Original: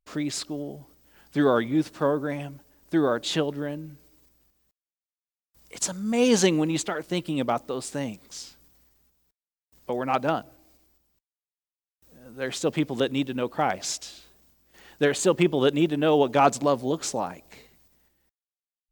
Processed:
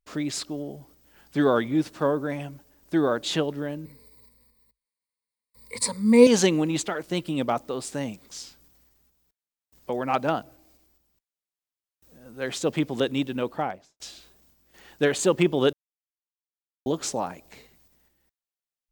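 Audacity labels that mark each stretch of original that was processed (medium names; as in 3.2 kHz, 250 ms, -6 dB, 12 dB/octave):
3.850000	6.270000	rippled EQ curve crests per octave 0.94, crest to trough 18 dB
13.420000	14.000000	studio fade out
15.730000	16.860000	mute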